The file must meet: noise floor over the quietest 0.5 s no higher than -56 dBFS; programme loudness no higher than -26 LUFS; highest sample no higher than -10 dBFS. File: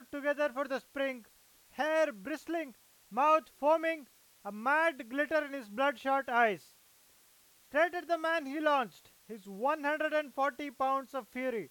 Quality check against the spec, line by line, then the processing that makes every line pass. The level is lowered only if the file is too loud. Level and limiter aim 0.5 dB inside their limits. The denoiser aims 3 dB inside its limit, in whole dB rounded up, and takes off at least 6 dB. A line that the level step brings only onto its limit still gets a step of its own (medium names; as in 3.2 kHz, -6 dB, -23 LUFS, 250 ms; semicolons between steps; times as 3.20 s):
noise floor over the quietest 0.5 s -64 dBFS: pass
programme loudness -32.5 LUFS: pass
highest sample -15.5 dBFS: pass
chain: none needed